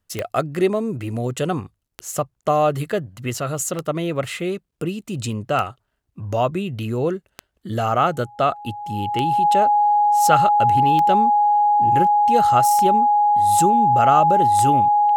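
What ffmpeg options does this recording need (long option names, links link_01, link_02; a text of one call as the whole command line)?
ffmpeg -i in.wav -af "adeclick=threshold=4,bandreject=frequency=830:width=30" out.wav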